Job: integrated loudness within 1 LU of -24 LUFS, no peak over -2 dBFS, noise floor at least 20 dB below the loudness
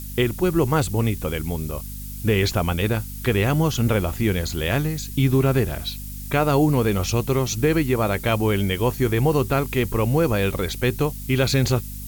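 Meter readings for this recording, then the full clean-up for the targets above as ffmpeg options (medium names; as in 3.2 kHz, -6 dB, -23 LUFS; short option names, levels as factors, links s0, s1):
hum 50 Hz; highest harmonic 250 Hz; hum level -32 dBFS; noise floor -33 dBFS; noise floor target -42 dBFS; loudness -22.0 LUFS; peak level -6.5 dBFS; loudness target -24.0 LUFS
-> -af "bandreject=f=50:t=h:w=4,bandreject=f=100:t=h:w=4,bandreject=f=150:t=h:w=4,bandreject=f=200:t=h:w=4,bandreject=f=250:t=h:w=4"
-af "afftdn=nr=9:nf=-33"
-af "volume=0.794"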